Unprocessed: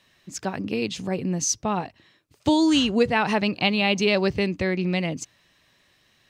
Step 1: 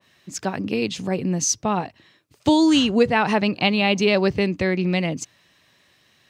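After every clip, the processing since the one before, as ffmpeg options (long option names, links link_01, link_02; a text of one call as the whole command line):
ffmpeg -i in.wav -af "highpass=76,adynamicequalizer=threshold=0.02:dfrequency=2000:dqfactor=0.7:tfrequency=2000:tqfactor=0.7:attack=5:release=100:ratio=0.375:range=1.5:mode=cutabove:tftype=highshelf,volume=3dB" out.wav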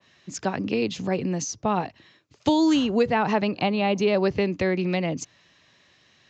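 ffmpeg -i in.wav -filter_complex "[0:a]aresample=16000,aresample=44100,acrossover=split=300|1300[link_01][link_02][link_03];[link_01]acompressor=threshold=-28dB:ratio=4[link_04];[link_02]acompressor=threshold=-19dB:ratio=4[link_05];[link_03]acompressor=threshold=-32dB:ratio=4[link_06];[link_04][link_05][link_06]amix=inputs=3:normalize=0" out.wav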